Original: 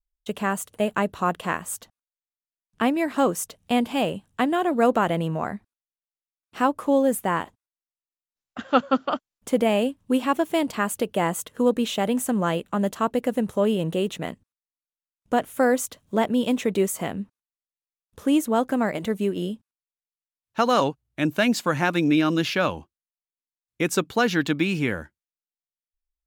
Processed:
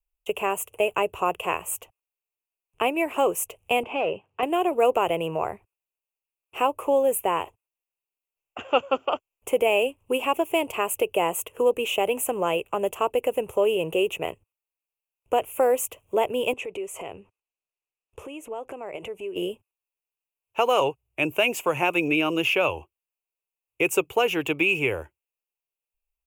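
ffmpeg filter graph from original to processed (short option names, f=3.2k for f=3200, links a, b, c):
-filter_complex "[0:a]asettb=1/sr,asplit=3[a][b][c];[a]atrim=end=3.834[d];[b]atrim=start=3.83:end=4.43,asetpts=PTS-STARTPTS,afade=t=in:d=0.004:c=qsin,afade=t=out:st=0.596:d=0.004:c=qsin,volume=21.5dB,asoftclip=hard,volume=-21.5dB,highpass=130,lowpass=2.5k[e];[c]atrim=start=4.426[f];[d][e]acrossfade=d=0.004:c1=hsin:c2=qsin[g];[g][f]acrossfade=d=0.004:c1=qsin:c2=hsin,asettb=1/sr,asplit=3[h][i][j];[h]atrim=end=16.534[k];[i]atrim=start=16.53:end=19.36,asetpts=PTS-STARTPTS,afade=t=in:d=0.004:c=qsin,afade=t=out:st=2.826:d=0.004:c=qsin,lowpass=8.1k,acompressor=threshold=-33dB:ratio=8:attack=3.2:release=140:knee=1:detection=peak[l];[j]atrim=start=19.356[m];[k][l]acrossfade=d=0.004:c1=hsin:c2=qsin[n];[n][m]acrossfade=d=0.004:c1=qsin:c2=hsin,firequalizer=gain_entry='entry(100,0);entry(210,-16);entry(390,7);entry(600,4);entry(940,5);entry(1700,-9);entry(2600,13);entry(4000,-19);entry(6800,-2);entry(12000,5)':delay=0.05:min_phase=1,acrossover=split=170|3000[o][p][q];[p]acompressor=threshold=-25dB:ratio=1.5[r];[o][r][q]amix=inputs=3:normalize=0"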